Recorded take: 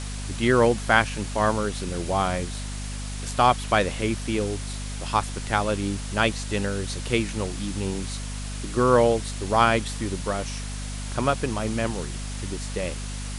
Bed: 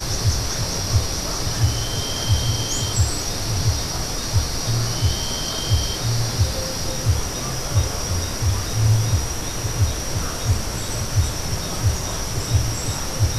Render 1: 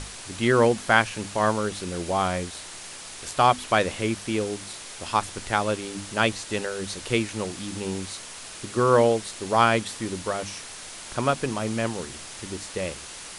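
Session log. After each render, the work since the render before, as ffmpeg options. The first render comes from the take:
-af "bandreject=f=50:t=h:w=6,bandreject=f=100:t=h:w=6,bandreject=f=150:t=h:w=6,bandreject=f=200:t=h:w=6,bandreject=f=250:t=h:w=6,bandreject=f=300:t=h:w=6"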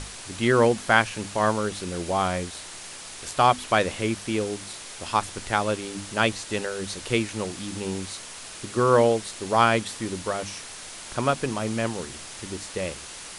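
-af anull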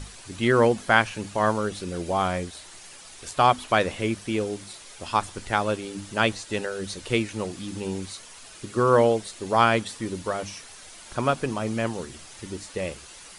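-af "afftdn=nr=8:nf=-40"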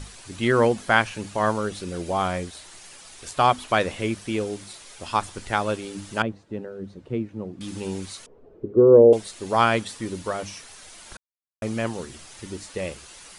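-filter_complex "[0:a]asettb=1/sr,asplit=3[s0][s1][s2];[s0]atrim=end=6.224[s3];[s1]atrim=start=6.22:end=7.61,asetpts=PTS-STARTPTS,afade=t=in:d=0.004:c=qsin,afade=t=out:st=1.386:d=0.004:c=qsin,bandpass=f=190:t=q:w=0.74[s4];[s2]atrim=start=7.606[s5];[s3][s4]acrossfade=d=0.004:c1=hsin:c2=qsin[s6];[s6][s5]acrossfade=d=0.004:c1=qsin:c2=hsin,asettb=1/sr,asplit=3[s7][s8][s9];[s7]atrim=end=8.264[s10];[s8]atrim=start=8.26:end=9.13,asetpts=PTS-STARTPTS,afade=t=in:d=0.004:c=qsin,afade=t=out:st=0.866:d=0.004:c=qsin,lowpass=f=430:t=q:w=4.3[s11];[s9]atrim=start=9.126[s12];[s10][s11]acrossfade=d=0.004:c1=hsin:c2=qsin[s13];[s13][s12]acrossfade=d=0.004:c1=qsin:c2=hsin,asplit=3[s14][s15][s16];[s14]atrim=end=11.17,asetpts=PTS-STARTPTS,afade=t=out:st=11.166:d=0.004:c=hsin[s17];[s15]atrim=start=11.17:end=11.62,asetpts=PTS-STARTPTS,volume=0[s18];[s16]atrim=start=11.62,asetpts=PTS-STARTPTS,afade=t=in:d=0.004:c=hsin[s19];[s17][s18][s19]concat=n=3:v=0:a=1"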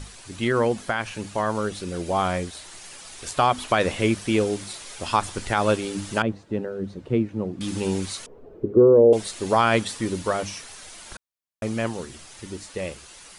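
-af "alimiter=limit=0.237:level=0:latency=1:release=83,dynaudnorm=f=280:g=21:m=1.88"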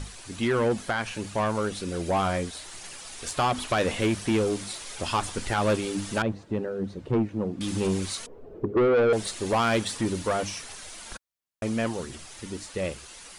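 -af "aphaser=in_gain=1:out_gain=1:delay=4.4:decay=0.23:speed=1.4:type=sinusoidal,asoftclip=type=tanh:threshold=0.126"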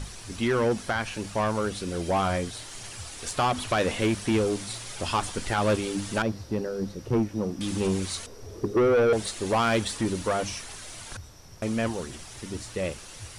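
-filter_complex "[1:a]volume=0.0596[s0];[0:a][s0]amix=inputs=2:normalize=0"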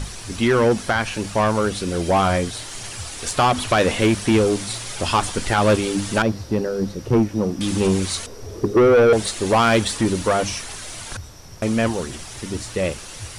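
-af "volume=2.37"

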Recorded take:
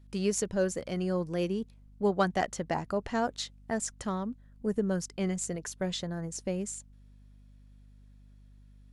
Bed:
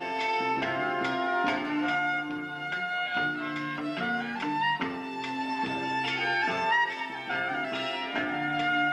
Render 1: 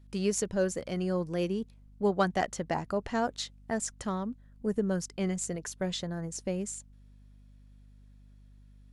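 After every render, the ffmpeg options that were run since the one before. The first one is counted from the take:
-af anull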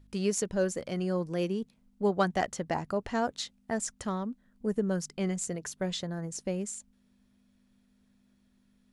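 -af "bandreject=f=50:t=h:w=4,bandreject=f=100:t=h:w=4,bandreject=f=150:t=h:w=4"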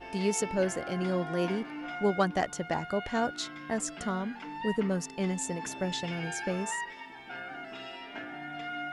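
-filter_complex "[1:a]volume=0.282[s0];[0:a][s0]amix=inputs=2:normalize=0"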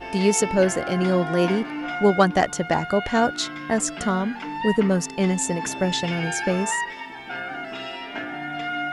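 -af "volume=2.99"

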